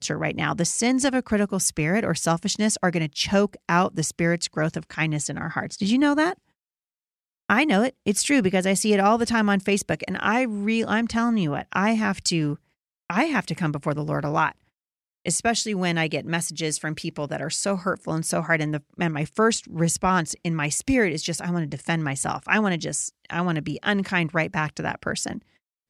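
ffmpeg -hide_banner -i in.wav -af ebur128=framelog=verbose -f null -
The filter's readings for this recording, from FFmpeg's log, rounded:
Integrated loudness:
  I:         -23.7 LUFS
  Threshold: -33.9 LUFS
Loudness range:
  LRA:         4.0 LU
  Threshold: -44.0 LUFS
  LRA low:   -25.7 LUFS
  LRA high:  -21.8 LUFS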